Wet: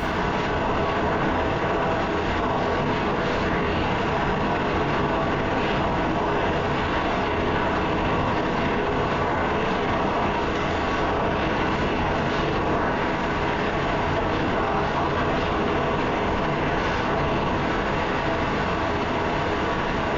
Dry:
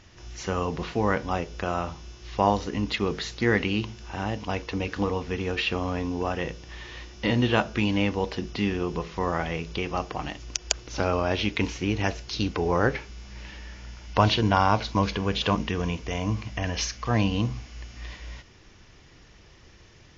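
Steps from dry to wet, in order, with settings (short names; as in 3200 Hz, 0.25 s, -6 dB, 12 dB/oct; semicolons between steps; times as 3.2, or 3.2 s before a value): per-bin compression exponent 0.2; LPF 2100 Hz 12 dB/oct; whisperiser; non-linear reverb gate 0.23 s falling, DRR -6.5 dB; limiter -7 dBFS, peak gain reduction 10.5 dB; gain -8 dB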